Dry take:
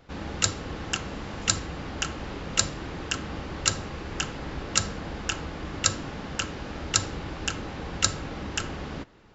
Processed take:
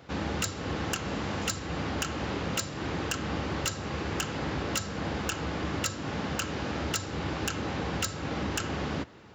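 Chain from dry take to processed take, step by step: HPF 69 Hz 24 dB/oct; compressor 4:1, threshold -30 dBFS, peak gain reduction 12 dB; hard clip -27 dBFS, distortion -11 dB; gain +4.5 dB

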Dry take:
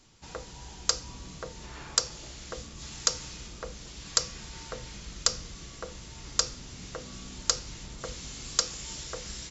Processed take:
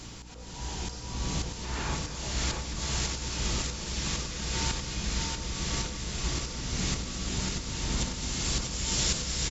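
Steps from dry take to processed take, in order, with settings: in parallel at -0.5 dB: vocal rider within 4 dB 0.5 s; on the sum: auto swell 0.62 s; echo with dull and thin repeats by turns 0.11 s, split 1300 Hz, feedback 83%, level -10 dB; hum 60 Hz, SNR 14 dB; bouncing-ball echo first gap 0.64 s, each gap 0.8×, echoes 5; gain +7.5 dB

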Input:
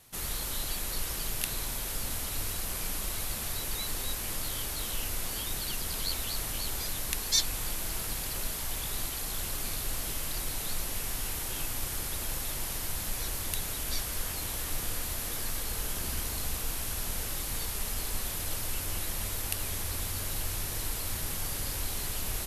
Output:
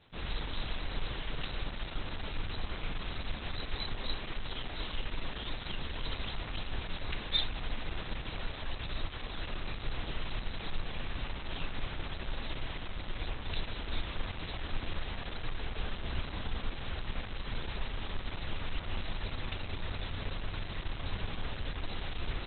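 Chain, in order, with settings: 3.95–5.86 bell 93 Hz -11 dB -> -3 dB 0.64 oct; Schroeder reverb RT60 0.36 s, combs from 26 ms, DRR 14.5 dB; gain +1.5 dB; Opus 8 kbps 48000 Hz

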